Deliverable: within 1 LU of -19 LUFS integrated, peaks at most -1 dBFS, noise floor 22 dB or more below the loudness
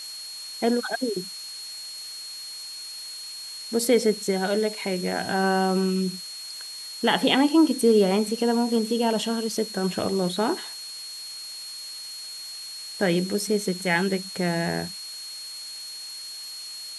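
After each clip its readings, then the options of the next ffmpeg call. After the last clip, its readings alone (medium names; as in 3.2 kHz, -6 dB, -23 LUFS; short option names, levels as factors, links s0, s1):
steady tone 4.3 kHz; tone level -36 dBFS; noise floor -38 dBFS; noise floor target -48 dBFS; loudness -26.0 LUFS; peak level -7.0 dBFS; loudness target -19.0 LUFS
-> -af "bandreject=f=4300:w=30"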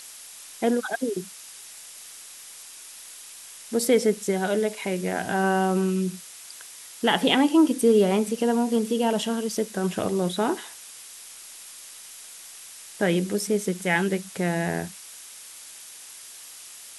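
steady tone not found; noise floor -44 dBFS; noise floor target -47 dBFS
-> -af "afftdn=nr=6:nf=-44"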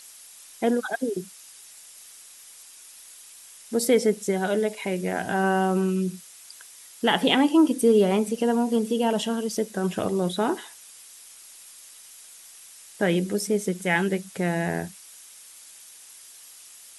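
noise floor -48 dBFS; loudness -24.5 LUFS; peak level -7.0 dBFS; loudness target -19.0 LUFS
-> -af "volume=1.88"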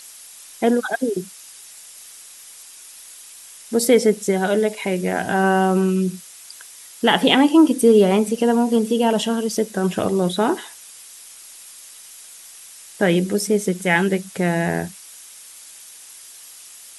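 loudness -19.0 LUFS; peak level -1.5 dBFS; noise floor -42 dBFS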